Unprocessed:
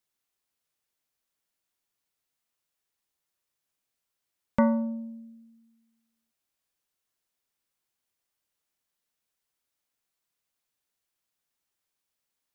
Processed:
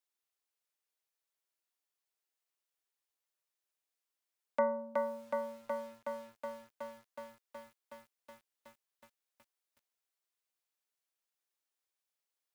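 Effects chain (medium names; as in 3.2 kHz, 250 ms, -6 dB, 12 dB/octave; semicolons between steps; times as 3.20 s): dynamic bell 680 Hz, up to +8 dB, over -43 dBFS, Q 2.8; high-pass 340 Hz 24 dB/octave; bit-crushed delay 370 ms, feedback 80%, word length 9-bit, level -3 dB; trim -6.5 dB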